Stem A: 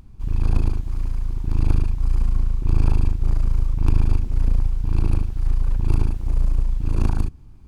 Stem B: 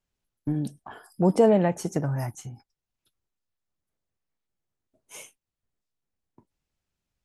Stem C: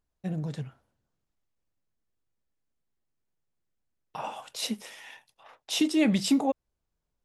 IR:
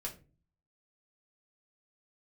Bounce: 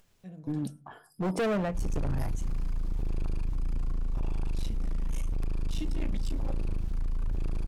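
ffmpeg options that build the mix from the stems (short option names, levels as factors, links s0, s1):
-filter_complex "[0:a]acompressor=threshold=0.126:ratio=6,adelay=1550,volume=0.841[s0];[1:a]tremolo=f=1.4:d=0.48,volume=0.708,asplit=2[s1][s2];[s2]volume=0.224[s3];[2:a]volume=0.141,asplit=2[s4][s5];[s5]volume=0.668[s6];[3:a]atrim=start_sample=2205[s7];[s3][s6]amix=inputs=2:normalize=0[s8];[s8][s7]afir=irnorm=-1:irlink=0[s9];[s0][s1][s4][s9]amix=inputs=4:normalize=0,acompressor=mode=upward:threshold=0.00355:ratio=2.5,asoftclip=type=hard:threshold=0.0531"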